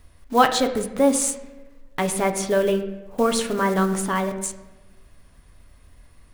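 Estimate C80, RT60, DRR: 12.0 dB, 1.1 s, 5.0 dB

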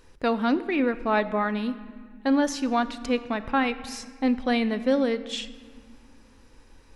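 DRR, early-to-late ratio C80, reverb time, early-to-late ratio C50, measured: 12.0 dB, 15.5 dB, 2.0 s, 14.5 dB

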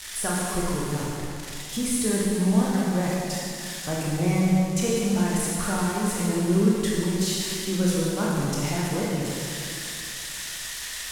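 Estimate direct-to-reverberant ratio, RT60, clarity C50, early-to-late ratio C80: -5.5 dB, 2.6 s, -2.5 dB, -0.5 dB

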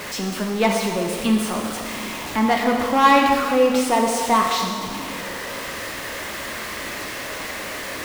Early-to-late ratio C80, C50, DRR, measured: 4.0 dB, 2.5 dB, 0.5 dB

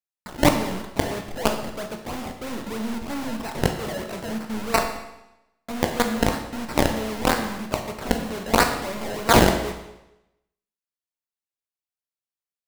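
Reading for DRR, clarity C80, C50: 4.0 dB, 9.0 dB, 7.5 dB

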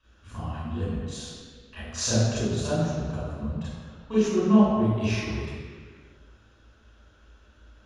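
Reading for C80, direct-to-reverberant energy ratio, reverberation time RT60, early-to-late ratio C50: -1.0 dB, -11.0 dB, not exponential, -3.0 dB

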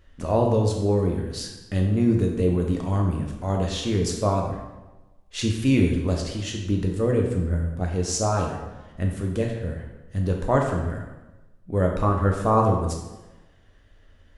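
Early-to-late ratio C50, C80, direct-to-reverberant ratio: 4.0 dB, 6.5 dB, 0.5 dB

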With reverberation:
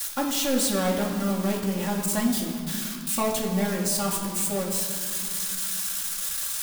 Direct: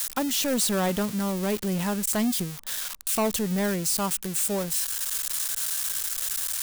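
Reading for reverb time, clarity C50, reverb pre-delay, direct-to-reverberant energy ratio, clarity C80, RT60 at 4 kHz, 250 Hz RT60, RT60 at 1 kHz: 2.3 s, 4.0 dB, 4 ms, -6.5 dB, 6.0 dB, 1.3 s, 3.4 s, 2.3 s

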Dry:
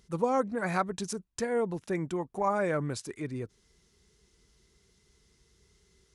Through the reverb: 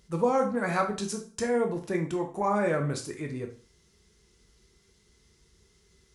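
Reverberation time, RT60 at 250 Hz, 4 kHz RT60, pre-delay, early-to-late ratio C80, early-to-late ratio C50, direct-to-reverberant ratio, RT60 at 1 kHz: 0.40 s, 0.40 s, 0.40 s, 6 ms, 15.5 dB, 10.5 dB, 3.0 dB, 0.40 s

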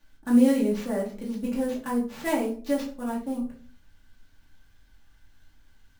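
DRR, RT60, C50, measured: -5.5 dB, 0.45 s, 9.0 dB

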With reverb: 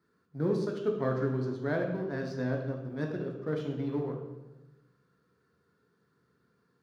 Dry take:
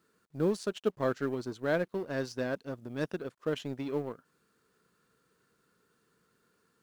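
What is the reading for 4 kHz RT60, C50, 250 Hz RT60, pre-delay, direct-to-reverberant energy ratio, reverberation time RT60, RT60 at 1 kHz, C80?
0.80 s, 5.0 dB, 1.5 s, 3 ms, 1.0 dB, 1.1 s, 1.0 s, 7.5 dB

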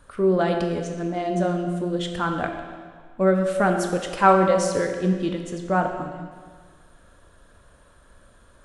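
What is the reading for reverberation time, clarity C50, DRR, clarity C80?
1.7 s, 5.5 dB, 4.0 dB, 7.0 dB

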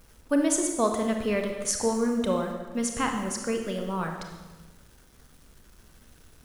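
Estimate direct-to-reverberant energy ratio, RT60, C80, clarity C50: 3.0 dB, 1.2 s, 6.5 dB, 4.5 dB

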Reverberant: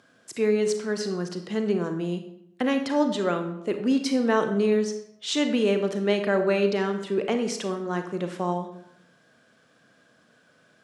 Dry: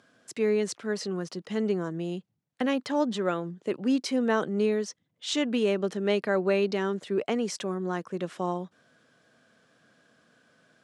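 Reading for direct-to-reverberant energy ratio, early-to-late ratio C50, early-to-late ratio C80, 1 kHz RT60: 6.0 dB, 8.5 dB, 11.5 dB, 0.75 s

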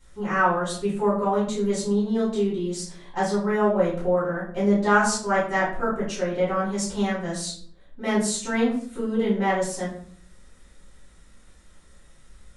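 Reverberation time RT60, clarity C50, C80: 0.55 s, 4.5 dB, 9.0 dB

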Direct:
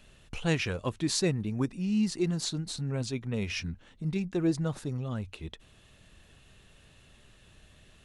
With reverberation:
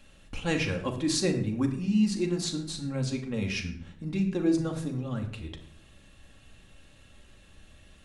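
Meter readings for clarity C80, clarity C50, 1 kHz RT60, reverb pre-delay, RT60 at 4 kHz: 12.0 dB, 9.5 dB, 0.60 s, 4 ms, 0.45 s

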